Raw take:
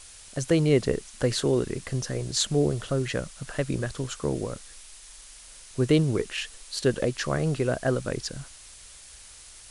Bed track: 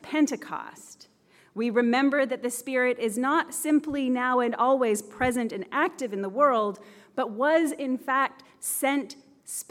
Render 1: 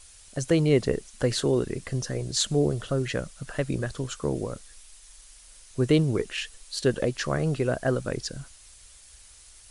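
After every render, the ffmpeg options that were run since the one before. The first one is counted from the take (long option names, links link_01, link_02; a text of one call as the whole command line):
ffmpeg -i in.wav -af "afftdn=noise_reduction=6:noise_floor=-48" out.wav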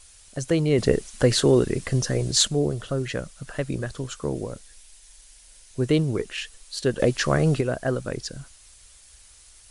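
ffmpeg -i in.wav -filter_complex "[0:a]asettb=1/sr,asplit=3[link_01][link_02][link_03];[link_01]atrim=end=0.784[link_04];[link_02]atrim=start=0.78:end=2.48,asetpts=PTS-STARTPTS,afade=type=in:duration=0.004:curve=qsin,afade=type=out:start_time=1.696:duration=0.004:curve=qsin,acontrast=58[link_05];[link_03]atrim=start=2.476[link_06];[link_04][link_05]acrossfade=duration=0.004:curve1=hsin:curve2=qsin[link_07];[link_07][link_06]acrossfade=duration=0.004:curve1=qsin:curve2=hsin,asettb=1/sr,asplit=3[link_08][link_09][link_10];[link_08]atrim=end=4.454[link_11];[link_09]atrim=start=4.45:end=5.84,asetpts=PTS-STARTPTS,afade=type=in:duration=0.004:curve=qsin,afade=type=out:start_time=1.386:duration=0.004:curve=qsin,equalizer=frequency=1200:width_type=o:width=0.22:gain=-8[link_12];[link_10]atrim=start=5.836[link_13];[link_11][link_12]acrossfade=duration=0.004:curve1=hsin:curve2=qsin[link_14];[link_14][link_13]acrossfade=duration=0.004:curve1=qsin:curve2=hsin,asettb=1/sr,asplit=3[link_15][link_16][link_17];[link_15]atrim=end=6.994[link_18];[link_16]atrim=start=6.99:end=7.61,asetpts=PTS-STARTPTS,afade=type=in:duration=0.004:curve=qsin,afade=type=out:start_time=0.616:duration=0.004:curve=qsin,acontrast=47[link_19];[link_17]atrim=start=7.606[link_20];[link_18][link_19]acrossfade=duration=0.004:curve1=hsin:curve2=qsin[link_21];[link_21][link_20]acrossfade=duration=0.004:curve1=qsin:curve2=hsin" out.wav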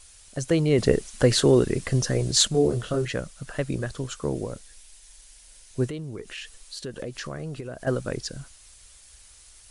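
ffmpeg -i in.wav -filter_complex "[0:a]asettb=1/sr,asplit=3[link_01][link_02][link_03];[link_01]atrim=end=2.524[link_04];[link_02]atrim=start=2.52:end=3.05,asetpts=PTS-STARTPTS,afade=type=in:duration=0.004:curve=qsin,afade=type=out:start_time=0.526:duration=0.004:curve=qsin,asplit=2[link_05][link_06];[link_06]adelay=25,volume=-2.5dB[link_07];[link_05][link_07]amix=inputs=2:normalize=0,atrim=end_sample=23373[link_08];[link_03]atrim=start=3.046[link_09];[link_04][link_08]acrossfade=duration=0.004:curve1=hsin:curve2=qsin[link_10];[link_10][link_09]acrossfade=duration=0.004:curve1=qsin:curve2=hsin,asettb=1/sr,asplit=3[link_11][link_12][link_13];[link_11]atrim=end=5.874[link_14];[link_12]atrim=start=5.87:end=7.87,asetpts=PTS-STARTPTS,afade=type=in:duration=0.004:curve=qsin,afade=type=out:start_time=1.996:duration=0.004:curve=qsin,acompressor=threshold=-35dB:ratio=3:attack=3.2:release=140:knee=1:detection=peak[link_15];[link_13]atrim=start=7.866[link_16];[link_14][link_15]acrossfade=duration=0.004:curve1=hsin:curve2=qsin[link_17];[link_17][link_16]acrossfade=duration=0.004:curve1=qsin:curve2=hsin" out.wav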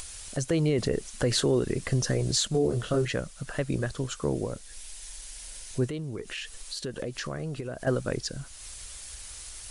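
ffmpeg -i in.wav -af "acompressor=mode=upward:threshold=-32dB:ratio=2.5,alimiter=limit=-16dB:level=0:latency=1:release=161" out.wav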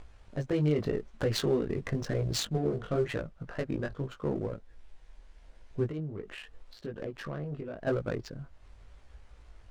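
ffmpeg -i in.wav -af "flanger=delay=18:depth=2.7:speed=0.87,adynamicsmooth=sensitivity=5.5:basefreq=1000" out.wav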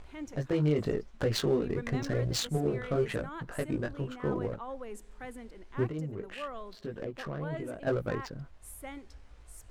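ffmpeg -i in.wav -i bed.wav -filter_complex "[1:a]volume=-19dB[link_01];[0:a][link_01]amix=inputs=2:normalize=0" out.wav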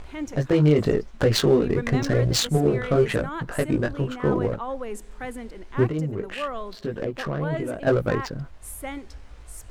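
ffmpeg -i in.wav -af "volume=9.5dB" out.wav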